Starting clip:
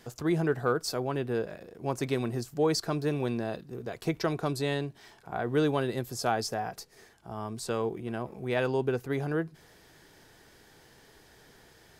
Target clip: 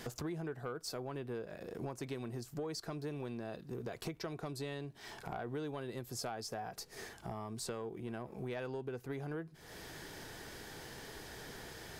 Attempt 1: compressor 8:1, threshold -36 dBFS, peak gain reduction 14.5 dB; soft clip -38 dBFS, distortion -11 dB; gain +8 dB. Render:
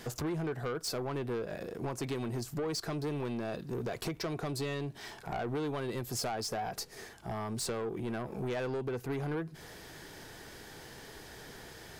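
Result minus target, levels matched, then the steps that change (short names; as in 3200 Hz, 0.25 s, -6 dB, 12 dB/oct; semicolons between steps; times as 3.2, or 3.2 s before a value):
compressor: peak gain reduction -9 dB
change: compressor 8:1, threshold -46.5 dBFS, peak gain reduction 24 dB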